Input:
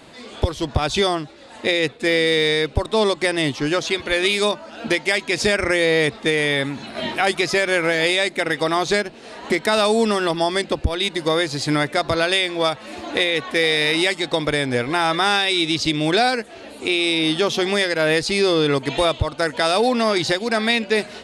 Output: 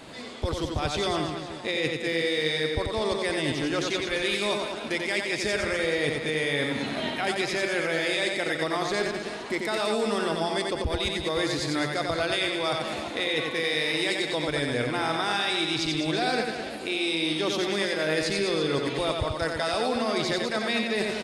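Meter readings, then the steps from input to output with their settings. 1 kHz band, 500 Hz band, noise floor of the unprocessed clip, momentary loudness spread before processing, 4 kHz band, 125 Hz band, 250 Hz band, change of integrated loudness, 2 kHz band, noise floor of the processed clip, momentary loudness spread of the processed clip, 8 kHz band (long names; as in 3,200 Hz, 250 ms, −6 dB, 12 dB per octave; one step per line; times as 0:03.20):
−7.5 dB, −7.5 dB, −41 dBFS, 6 LU, −7.0 dB, −6.5 dB, −6.5 dB, −7.0 dB, −7.0 dB, −35 dBFS, 4 LU, −6.5 dB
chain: reversed playback
downward compressor 4 to 1, threshold −27 dBFS, peak gain reduction 12.5 dB
reversed playback
reverse bouncing-ball delay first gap 90 ms, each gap 1.25×, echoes 5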